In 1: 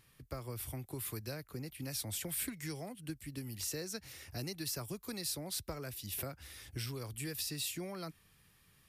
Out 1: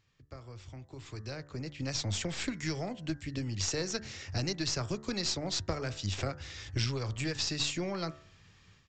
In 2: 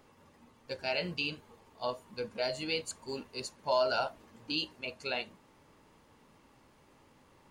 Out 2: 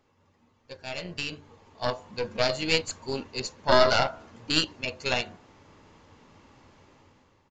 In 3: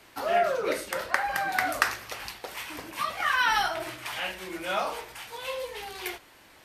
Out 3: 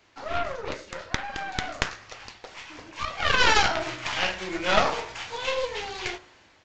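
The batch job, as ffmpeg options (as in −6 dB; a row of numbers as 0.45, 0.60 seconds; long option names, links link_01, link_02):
-af "equalizer=frequency=94:width=5.2:gain=8.5,bandreject=frequency=72.76:width_type=h:width=4,bandreject=frequency=145.52:width_type=h:width=4,bandreject=frequency=218.28:width_type=h:width=4,bandreject=frequency=291.04:width_type=h:width=4,bandreject=frequency=363.8:width_type=h:width=4,bandreject=frequency=436.56:width_type=h:width=4,bandreject=frequency=509.32:width_type=h:width=4,bandreject=frequency=582.08:width_type=h:width=4,bandreject=frequency=654.84:width_type=h:width=4,bandreject=frequency=727.6:width_type=h:width=4,bandreject=frequency=800.36:width_type=h:width=4,bandreject=frequency=873.12:width_type=h:width=4,bandreject=frequency=945.88:width_type=h:width=4,bandreject=frequency=1018.64:width_type=h:width=4,bandreject=frequency=1091.4:width_type=h:width=4,bandreject=frequency=1164.16:width_type=h:width=4,bandreject=frequency=1236.92:width_type=h:width=4,bandreject=frequency=1309.68:width_type=h:width=4,bandreject=frequency=1382.44:width_type=h:width=4,bandreject=frequency=1455.2:width_type=h:width=4,bandreject=frequency=1527.96:width_type=h:width=4,bandreject=frequency=1600.72:width_type=h:width=4,bandreject=frequency=1673.48:width_type=h:width=4,bandreject=frequency=1746.24:width_type=h:width=4,bandreject=frequency=1819:width_type=h:width=4,bandreject=frequency=1891.76:width_type=h:width=4,bandreject=frequency=1964.52:width_type=h:width=4,aeval=exprs='0.596*(cos(1*acos(clip(val(0)/0.596,-1,1)))-cos(1*PI/2))+0.188*(cos(3*acos(clip(val(0)/0.596,-1,1)))-cos(3*PI/2))+0.15*(cos(4*acos(clip(val(0)/0.596,-1,1)))-cos(4*PI/2))+0.0668*(cos(7*acos(clip(val(0)/0.596,-1,1)))-cos(7*PI/2))+0.0376*(cos(8*acos(clip(val(0)/0.596,-1,1)))-cos(8*PI/2))':channel_layout=same,dynaudnorm=framelen=970:gausssize=3:maxgain=14dB,aeval=exprs='(tanh(1.78*val(0)+0.75)-tanh(0.75))/1.78':channel_layout=same,aresample=16000,aresample=44100,volume=1dB"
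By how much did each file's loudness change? +6.0, +8.0, +2.5 LU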